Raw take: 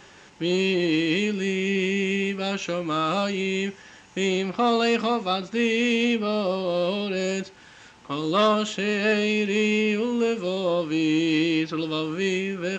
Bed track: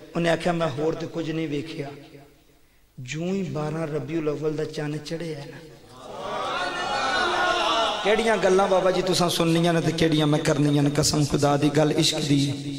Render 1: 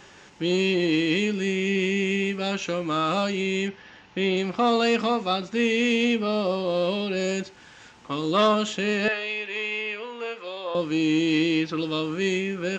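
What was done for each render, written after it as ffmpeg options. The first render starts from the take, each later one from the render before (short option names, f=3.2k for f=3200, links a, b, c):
-filter_complex "[0:a]asettb=1/sr,asplit=3[a][b][c];[a]atrim=end=3.684[d];[b]atrim=start=3.68:end=4.37,asetpts=PTS-STARTPTS,afade=t=in:d=0.004:c=qsin,afade=t=out:st=0.686:d=0.004:c=qsin,lowpass=f=4.6k:w=0.5412,lowpass=f=4.6k:w=1.3066[e];[c]atrim=start=4.366[f];[d][e]acrossfade=d=0.004:c1=hsin:c2=qsin[g];[g][f]acrossfade=d=0.004:c1=qsin:c2=hsin,asettb=1/sr,asplit=3[h][i][j];[h]atrim=end=9.084[k];[i]atrim=start=9.08:end=10.75,asetpts=PTS-STARTPTS,afade=t=in:d=0.004:c=qsin,afade=t=out:st=1.666:d=0.004:c=qsin,highpass=770,lowpass=3.2k[l];[j]atrim=start=10.746[m];[k][l]acrossfade=d=0.004:c1=hsin:c2=qsin[n];[n][m]acrossfade=d=0.004:c1=qsin:c2=hsin"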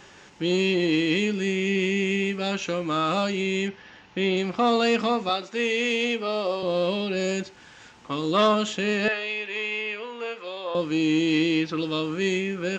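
-filter_complex "[0:a]asettb=1/sr,asplit=3[a][b][c];[a]atrim=end=5.294[d];[b]atrim=start=5.29:end=6.63,asetpts=PTS-STARTPTS,afade=t=in:d=0.004:c=qsin,afade=t=out:st=1.336:d=0.004:c=qsin,highpass=340[e];[c]atrim=start=6.626[f];[d][e]acrossfade=d=0.004:c1=hsin:c2=qsin[g];[g][f]acrossfade=d=0.004:c1=qsin:c2=hsin"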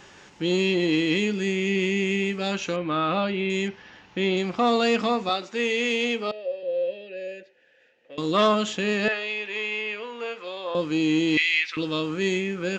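-filter_complex "[0:a]asettb=1/sr,asplit=3[a][b][c];[a]atrim=end=2.764[d];[b]atrim=start=2.76:end=3.5,asetpts=PTS-STARTPTS,afade=t=in:d=0.004:c=qsin,afade=t=out:st=0.736:d=0.004:c=qsin,lowpass=f=3.6k:w=0.5412,lowpass=f=3.6k:w=1.3066[e];[c]atrim=start=3.496[f];[d][e]acrossfade=d=0.004:c1=hsin:c2=qsin[g];[g][f]acrossfade=d=0.004:c1=qsin:c2=hsin,asettb=1/sr,asplit=3[h][i][j];[h]atrim=end=6.314[k];[i]atrim=start=6.31:end=8.18,asetpts=PTS-STARTPTS,afade=t=in:d=0.004:c=qsin,afade=t=out:st=1.866:d=0.004:c=qsin,asplit=3[l][m][n];[l]bandpass=f=530:t=q:w=8,volume=0dB[o];[m]bandpass=f=1.84k:t=q:w=8,volume=-6dB[p];[n]bandpass=f=2.48k:t=q:w=8,volume=-9dB[q];[o][p][q]amix=inputs=3:normalize=0[r];[j]atrim=start=8.176[s];[k][r]acrossfade=d=0.004:c1=hsin:c2=qsin[t];[t][s]acrossfade=d=0.004:c1=qsin:c2=hsin,asettb=1/sr,asplit=3[u][v][w];[u]atrim=end=11.374[x];[v]atrim=start=11.37:end=11.77,asetpts=PTS-STARTPTS,afade=t=in:d=0.004:c=qsin,afade=t=out:st=0.396:d=0.004:c=qsin,highpass=f=2.1k:t=q:w=4.6[y];[w]atrim=start=11.766[z];[x][y]acrossfade=d=0.004:c1=hsin:c2=qsin[aa];[aa][z]acrossfade=d=0.004:c1=qsin:c2=hsin"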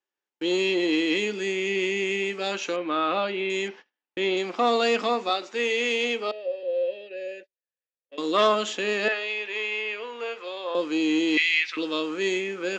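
-af "highpass=f=270:w=0.5412,highpass=f=270:w=1.3066,agate=range=-42dB:threshold=-42dB:ratio=16:detection=peak"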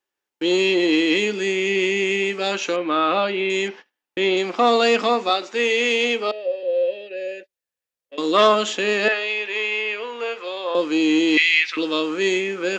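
-af "volume=5.5dB"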